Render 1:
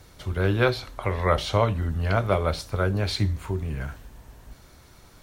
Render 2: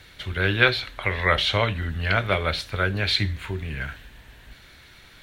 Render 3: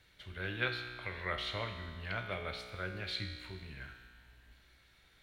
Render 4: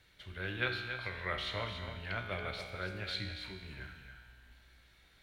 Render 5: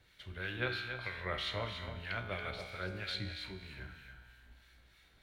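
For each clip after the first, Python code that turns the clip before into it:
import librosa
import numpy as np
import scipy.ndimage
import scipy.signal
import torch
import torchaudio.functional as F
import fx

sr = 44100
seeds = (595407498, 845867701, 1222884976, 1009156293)

y1 = fx.band_shelf(x, sr, hz=2500.0, db=12.5, octaves=1.7)
y1 = y1 * librosa.db_to_amplitude(-2.0)
y2 = fx.comb_fb(y1, sr, f0_hz=61.0, decay_s=1.9, harmonics='all', damping=0.0, mix_pct=80)
y2 = y2 * librosa.db_to_amplitude(-5.0)
y3 = y2 + 10.0 ** (-8.5 / 20.0) * np.pad(y2, (int(280 * sr / 1000.0), 0))[:len(y2)]
y4 = fx.harmonic_tremolo(y3, sr, hz=3.1, depth_pct=50, crossover_hz=1100.0)
y4 = y4 * librosa.db_to_amplitude(1.5)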